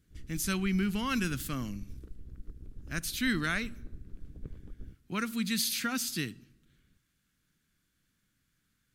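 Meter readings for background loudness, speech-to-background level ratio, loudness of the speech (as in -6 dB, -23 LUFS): -50.5 LUFS, 18.0 dB, -32.5 LUFS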